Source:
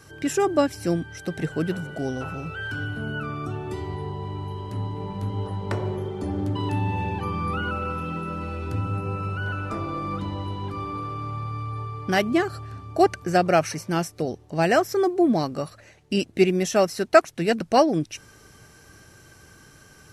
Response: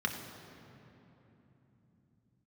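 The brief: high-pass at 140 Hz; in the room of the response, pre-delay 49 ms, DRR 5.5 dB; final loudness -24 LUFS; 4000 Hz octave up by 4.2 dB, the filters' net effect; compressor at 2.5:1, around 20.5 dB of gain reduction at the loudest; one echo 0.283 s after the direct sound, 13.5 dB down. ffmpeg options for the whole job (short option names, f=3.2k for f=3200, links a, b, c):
-filter_complex "[0:a]highpass=140,equalizer=f=4k:t=o:g=6,acompressor=threshold=-41dB:ratio=2.5,aecho=1:1:283:0.211,asplit=2[a][b];[1:a]atrim=start_sample=2205,adelay=49[c];[b][c]afir=irnorm=-1:irlink=0,volume=-12dB[d];[a][d]amix=inputs=2:normalize=0,volume=14.5dB"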